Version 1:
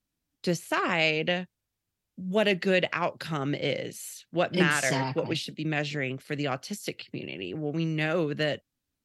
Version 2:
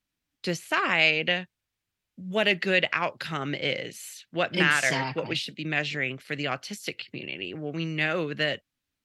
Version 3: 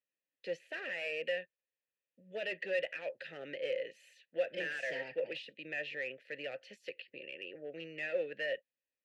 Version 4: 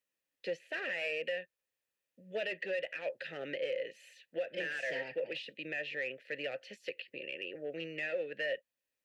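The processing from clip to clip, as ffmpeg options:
-af "equalizer=f=2.3k:w=0.55:g=8,volume=-3dB"
-filter_complex "[0:a]asoftclip=type=hard:threshold=-24dB,asplit=3[a][b][c];[a]bandpass=f=530:t=q:w=8,volume=0dB[d];[b]bandpass=f=1.84k:t=q:w=8,volume=-6dB[e];[c]bandpass=f=2.48k:t=q:w=8,volume=-9dB[f];[d][e][f]amix=inputs=3:normalize=0,volume=1dB"
-af "alimiter=level_in=7.5dB:limit=-24dB:level=0:latency=1:release=338,volume=-7.5dB,volume=4.5dB"

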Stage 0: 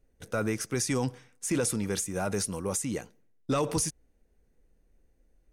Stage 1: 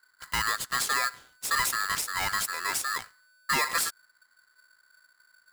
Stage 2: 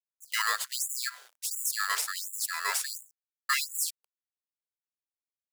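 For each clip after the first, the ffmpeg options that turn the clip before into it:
-af "aeval=exprs='val(0)*sgn(sin(2*PI*1500*n/s))':c=same,volume=1dB"
-af "agate=range=-33dB:threshold=-57dB:ratio=3:detection=peak,acrusher=bits=8:mix=0:aa=0.000001,afftfilt=real='re*gte(b*sr/1024,370*pow(6900/370,0.5+0.5*sin(2*PI*1.4*pts/sr)))':imag='im*gte(b*sr/1024,370*pow(6900/370,0.5+0.5*sin(2*PI*1.4*pts/sr)))':win_size=1024:overlap=0.75"

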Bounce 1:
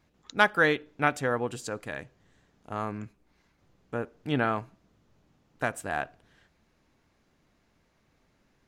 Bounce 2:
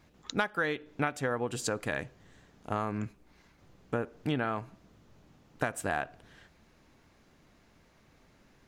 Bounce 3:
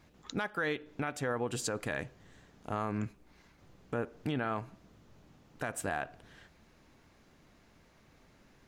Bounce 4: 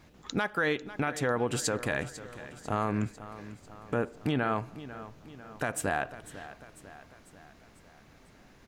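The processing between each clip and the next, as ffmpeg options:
-af "acompressor=threshold=-33dB:ratio=8,volume=6dB"
-af "alimiter=limit=-23.5dB:level=0:latency=1:release=17"
-af "aecho=1:1:497|994|1491|1988|2485:0.178|0.0978|0.0538|0.0296|0.0163,volume=5dB"

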